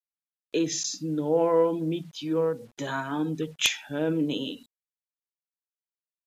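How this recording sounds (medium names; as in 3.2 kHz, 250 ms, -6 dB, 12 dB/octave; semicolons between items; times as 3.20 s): a quantiser's noise floor 10-bit, dither none; MP3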